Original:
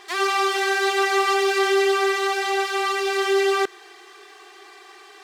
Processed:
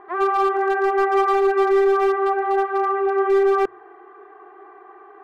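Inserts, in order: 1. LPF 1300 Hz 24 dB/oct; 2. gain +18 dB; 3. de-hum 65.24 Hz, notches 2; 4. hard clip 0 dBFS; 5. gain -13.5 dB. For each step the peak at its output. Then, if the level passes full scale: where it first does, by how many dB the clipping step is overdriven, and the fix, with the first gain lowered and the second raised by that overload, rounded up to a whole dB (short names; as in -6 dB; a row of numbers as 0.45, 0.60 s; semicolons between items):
-12.5, +5.5, +5.5, 0.0, -13.5 dBFS; step 2, 5.5 dB; step 2 +12 dB, step 5 -7.5 dB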